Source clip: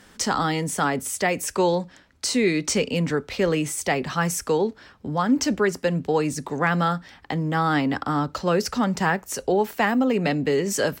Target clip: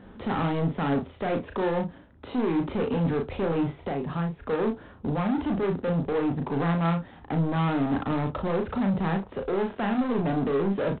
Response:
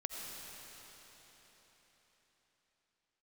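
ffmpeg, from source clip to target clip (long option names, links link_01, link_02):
-filter_complex "[0:a]firequalizer=gain_entry='entry(240,0);entry(980,-6);entry(2000,-16)':delay=0.05:min_phase=1,asettb=1/sr,asplit=3[link_01][link_02][link_03];[link_01]atrim=end=3.794[link_04];[link_02]atrim=start=3.79:end=4.5,asetpts=PTS-STARTPTS,afade=type=in:duration=0.004:curve=qsin,afade=type=out:start_time=0.706:duration=0.004:curve=qsin,acompressor=threshold=-33dB:ratio=5[link_05];[link_03]atrim=start=4.496[link_06];[link_04][link_05]acrossfade=duration=0.004:curve1=hsin:curve2=qsin[link_07];[link_07][link_06]acrossfade=duration=0.004:curve1=qsin:curve2=hsin,alimiter=limit=-20dB:level=0:latency=1:release=23,asoftclip=type=tanh:threshold=-30.5dB,aecho=1:1:36|61:0.562|0.178,volume=6.5dB" -ar 8000 -c:a adpcm_ima_wav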